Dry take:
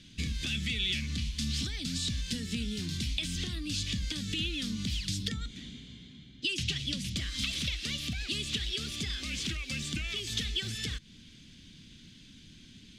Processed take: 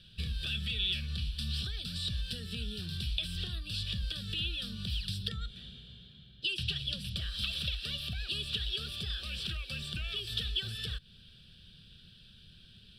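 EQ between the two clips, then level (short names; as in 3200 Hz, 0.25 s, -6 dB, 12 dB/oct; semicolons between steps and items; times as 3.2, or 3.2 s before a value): fixed phaser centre 1400 Hz, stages 8; 0.0 dB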